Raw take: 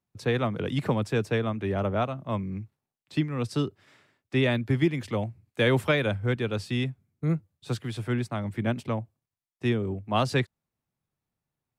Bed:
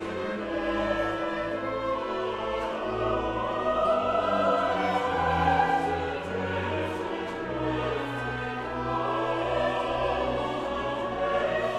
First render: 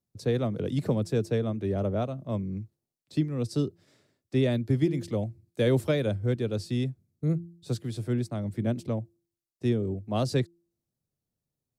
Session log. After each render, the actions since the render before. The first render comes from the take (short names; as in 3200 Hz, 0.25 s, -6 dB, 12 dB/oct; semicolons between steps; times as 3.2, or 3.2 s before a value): band shelf 1600 Hz -10.5 dB 2.3 oct; de-hum 170.6 Hz, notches 2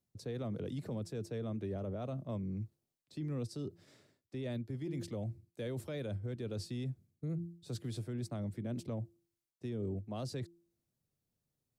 reverse; compressor 6:1, threshold -33 dBFS, peak gain reduction 13.5 dB; reverse; limiter -32 dBFS, peak gain reduction 7 dB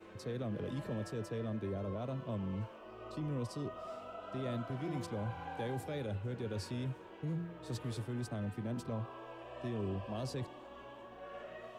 add bed -21.5 dB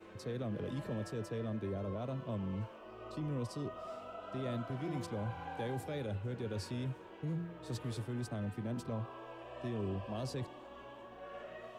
nothing audible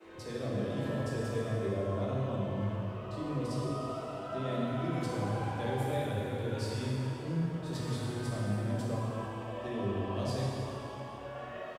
bands offset in time highs, lows 30 ms, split 190 Hz; plate-style reverb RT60 2.9 s, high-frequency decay 0.85×, DRR -5.5 dB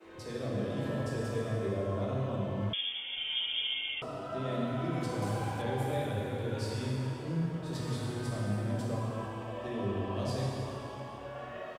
2.73–4.02 inverted band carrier 3400 Hz; 5.22–5.62 high shelf 5900 Hz +11 dB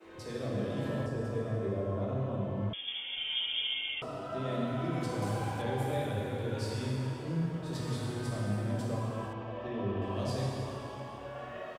1.06–2.88 high shelf 2000 Hz -10 dB; 9.33–10.02 air absorption 150 m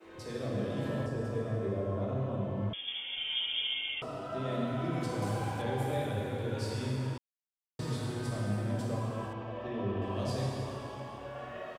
7.18–7.79 mute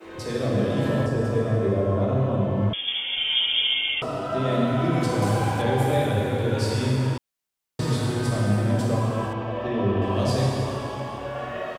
gain +11 dB